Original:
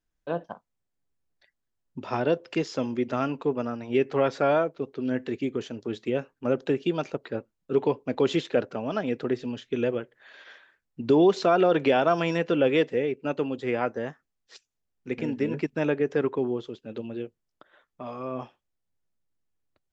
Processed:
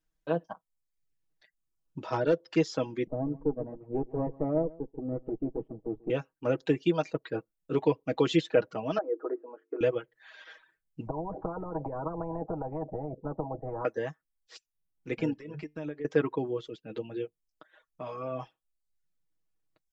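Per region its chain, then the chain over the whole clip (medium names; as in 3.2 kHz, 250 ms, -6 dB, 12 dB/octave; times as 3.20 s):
2.06–2.56 s: peaking EQ 2.4 kHz -8 dB 0.63 oct + hard clipper -18.5 dBFS + low-pass 6.6 kHz 24 dB/octave
3.07–6.10 s: comb filter that takes the minimum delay 0.34 ms + Bessel low-pass 540 Hz, order 4 + delay 139 ms -12 dB
8.98–9.81 s: elliptic band-pass 330–1300 Hz, stop band 50 dB + hum notches 50/100/150/200/250/300/350/400/450 Hz
11.07–13.85 s: compression, threshold -22 dBFS + steep low-pass 640 Hz + spectrum-flattening compressor 10:1
15.33–16.05 s: compression 16:1, threshold -29 dBFS + feedback comb 150 Hz, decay 0.26 s, mix 50%
whole clip: reverb removal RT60 0.65 s; comb 6.3 ms, depth 66%; trim -2 dB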